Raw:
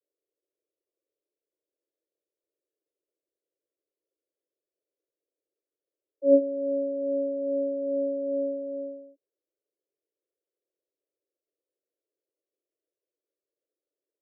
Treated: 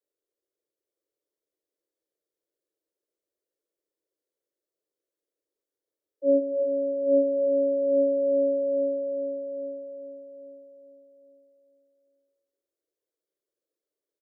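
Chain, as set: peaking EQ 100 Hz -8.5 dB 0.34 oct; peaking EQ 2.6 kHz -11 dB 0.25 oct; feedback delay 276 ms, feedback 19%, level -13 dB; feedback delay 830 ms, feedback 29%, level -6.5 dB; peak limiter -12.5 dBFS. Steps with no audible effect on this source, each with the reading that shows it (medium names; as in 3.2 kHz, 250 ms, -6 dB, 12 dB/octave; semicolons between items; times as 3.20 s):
peaking EQ 100 Hz: input has nothing below 270 Hz; peaking EQ 2.6 kHz: input has nothing above 570 Hz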